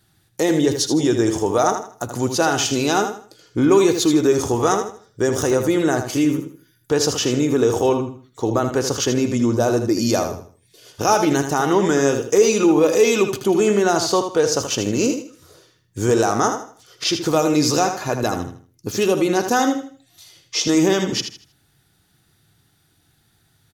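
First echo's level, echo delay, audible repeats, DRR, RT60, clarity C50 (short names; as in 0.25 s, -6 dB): -8.0 dB, 79 ms, 3, none, none, none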